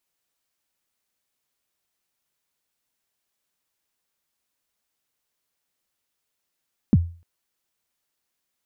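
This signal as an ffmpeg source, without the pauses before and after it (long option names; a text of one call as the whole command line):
ffmpeg -f lavfi -i "aevalsrc='0.376*pow(10,-3*t/0.38)*sin(2*PI*(270*0.037/log(85/270)*(exp(log(85/270)*min(t,0.037)/0.037)-1)+85*max(t-0.037,0)))':duration=0.3:sample_rate=44100" out.wav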